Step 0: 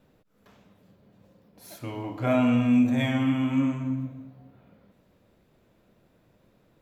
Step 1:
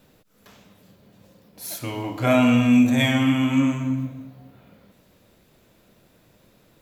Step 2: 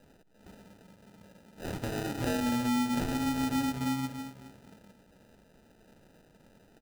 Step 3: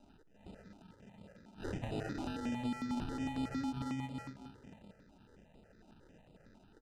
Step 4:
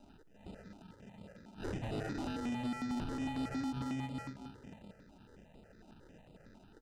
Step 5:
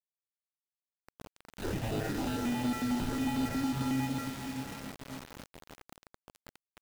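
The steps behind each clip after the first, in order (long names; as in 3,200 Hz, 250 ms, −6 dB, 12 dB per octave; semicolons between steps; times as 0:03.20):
high-shelf EQ 2,800 Hz +11 dB; level +4.5 dB
downward compressor 16 to 1, threshold −25 dBFS, peak gain reduction 13.5 dB; comb filter 4.3 ms, depth 37%; decimation without filtering 40×; level −3 dB
downward compressor 6 to 1, threshold −34 dBFS, peak gain reduction 8 dB; high-frequency loss of the air 84 metres; step-sequenced phaser 11 Hz 480–5,900 Hz; level +1 dB
soft clipping −35 dBFS, distortion −15 dB; level +3 dB
fade in at the beginning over 1.72 s; feedback delay with all-pass diffusion 485 ms, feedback 48%, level −9 dB; bit reduction 8 bits; level +5 dB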